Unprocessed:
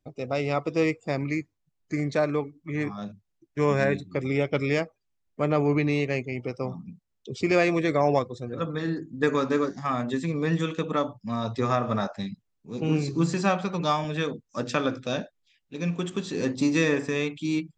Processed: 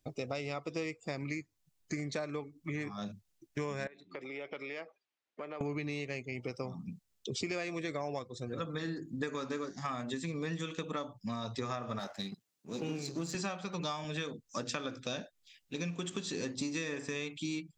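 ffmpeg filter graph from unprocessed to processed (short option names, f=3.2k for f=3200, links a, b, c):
-filter_complex "[0:a]asettb=1/sr,asplit=3[a][b][c];[a]atrim=end=3.874[d];[b]atrim=start=3.87:end=5.61,asetpts=PTS-STARTPTS,afade=t=in:d=0.004:c=qsin,afade=t=out:st=1.736:d=0.004:c=qsin,acompressor=threshold=-35dB:ratio=12:attack=3.2:release=140:knee=1:detection=peak,highpass=380,lowpass=3.2k[e];[c]atrim=start=5.606[f];[d][e]acrossfade=d=0.004:c1=hsin:c2=qsin[g];[g][f]acrossfade=d=0.004:c1=qsin:c2=hsin,asettb=1/sr,asplit=3[h][i][j];[h]atrim=end=11.994[k];[i]atrim=start=11.99:end=13.35,asetpts=PTS-STARTPTS,afade=t=in:d=0.004:c=qsin,afade=t=out:st=1.356:d=0.004:c=qsin,aeval=exprs='if(lt(val(0),0),0.447*val(0),val(0))':c=same,highpass=160[l];[j]atrim=start=13.346[m];[k][l]acrossfade=d=0.004:c1=hsin:c2=qsin[n];[n][m]acrossfade=d=0.004:c1=qsin:c2=hsin,highshelf=f=2.7k:g=10,acompressor=threshold=-35dB:ratio=6"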